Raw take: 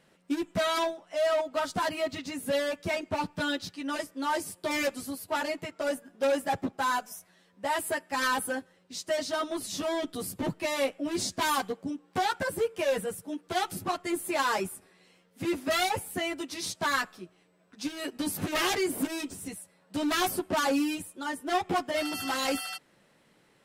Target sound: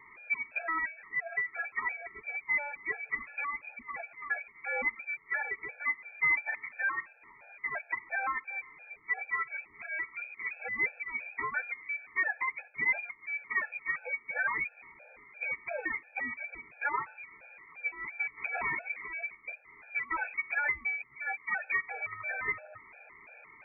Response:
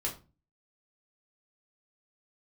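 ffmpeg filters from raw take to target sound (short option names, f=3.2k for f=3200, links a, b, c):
-af "aeval=exprs='val(0)+0.5*0.00708*sgn(val(0))':c=same,lowpass=f=2.2k:t=q:w=0.5098,lowpass=f=2.2k:t=q:w=0.6013,lowpass=f=2.2k:t=q:w=0.9,lowpass=f=2.2k:t=q:w=2.563,afreqshift=-2600,afftfilt=real='re*gt(sin(2*PI*2.9*pts/sr)*(1-2*mod(floor(b*sr/1024/450),2)),0)':imag='im*gt(sin(2*PI*2.9*pts/sr)*(1-2*mod(floor(b*sr/1024/450),2)),0)':win_size=1024:overlap=0.75,volume=-1.5dB"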